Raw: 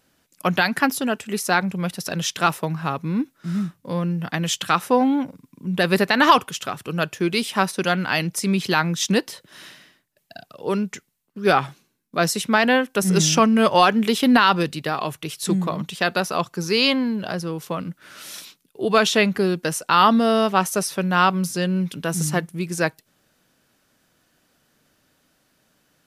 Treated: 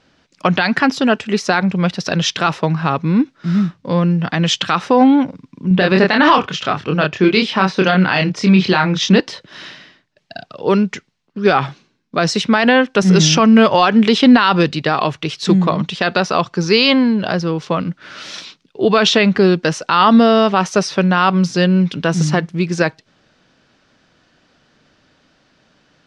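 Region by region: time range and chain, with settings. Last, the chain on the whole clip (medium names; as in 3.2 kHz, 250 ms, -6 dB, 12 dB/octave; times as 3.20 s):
5.68–9.20 s: distance through air 82 m + doubling 27 ms -4 dB
whole clip: low-pass 5.4 kHz 24 dB/octave; loudness maximiser +10 dB; trim -1 dB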